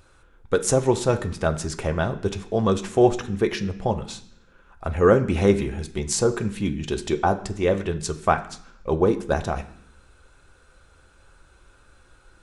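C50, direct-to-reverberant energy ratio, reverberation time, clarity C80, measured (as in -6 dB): 14.5 dB, 4.5 dB, 0.65 s, 17.0 dB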